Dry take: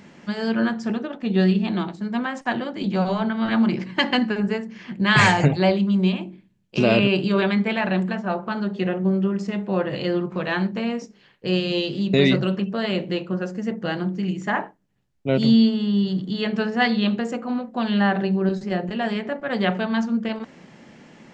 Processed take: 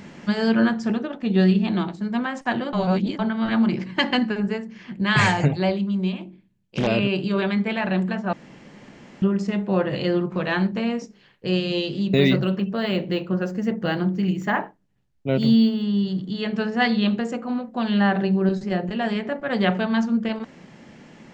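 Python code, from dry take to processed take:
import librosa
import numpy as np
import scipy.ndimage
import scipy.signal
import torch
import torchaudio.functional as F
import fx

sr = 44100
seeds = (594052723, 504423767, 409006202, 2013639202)

y = fx.doppler_dist(x, sr, depth_ms=0.43, at=(6.18, 6.87))
y = fx.resample_linear(y, sr, factor=2, at=(12.08, 15.82))
y = fx.edit(y, sr, fx.reverse_span(start_s=2.73, length_s=0.46),
    fx.room_tone_fill(start_s=8.33, length_s=0.89), tone=tone)
y = fx.low_shelf(y, sr, hz=110.0, db=5.5)
y = fx.rider(y, sr, range_db=10, speed_s=2.0)
y = y * librosa.db_to_amplitude(-2.0)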